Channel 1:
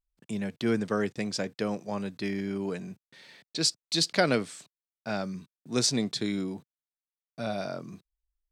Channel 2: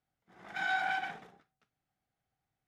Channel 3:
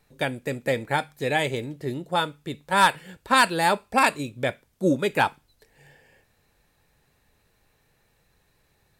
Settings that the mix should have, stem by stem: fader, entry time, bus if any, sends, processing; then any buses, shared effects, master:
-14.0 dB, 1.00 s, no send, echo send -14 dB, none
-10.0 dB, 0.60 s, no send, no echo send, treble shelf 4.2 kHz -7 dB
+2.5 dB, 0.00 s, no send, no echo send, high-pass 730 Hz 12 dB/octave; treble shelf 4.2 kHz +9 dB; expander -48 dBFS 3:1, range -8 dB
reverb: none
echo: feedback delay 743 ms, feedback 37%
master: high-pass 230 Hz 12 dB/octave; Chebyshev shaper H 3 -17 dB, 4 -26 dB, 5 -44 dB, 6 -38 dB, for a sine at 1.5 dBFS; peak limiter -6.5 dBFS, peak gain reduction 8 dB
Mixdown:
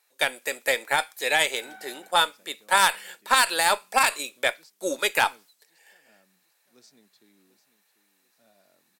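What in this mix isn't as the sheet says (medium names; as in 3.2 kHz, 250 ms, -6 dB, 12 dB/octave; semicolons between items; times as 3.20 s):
stem 1 -14.0 dB -> -25.5 dB; stem 2: entry 0.60 s -> 1.00 s; stem 3 +2.5 dB -> +8.5 dB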